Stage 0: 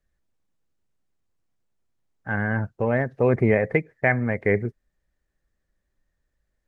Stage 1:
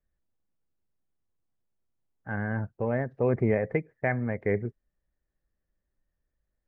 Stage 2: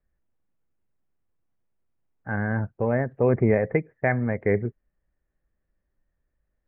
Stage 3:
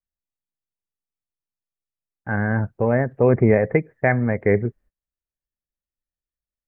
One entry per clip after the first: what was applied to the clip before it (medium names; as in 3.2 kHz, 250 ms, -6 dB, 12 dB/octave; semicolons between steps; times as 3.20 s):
treble shelf 2.3 kHz -11 dB; trim -5 dB
low-pass 2.5 kHz 24 dB/octave; trim +4.5 dB
gate -52 dBFS, range -24 dB; trim +4.5 dB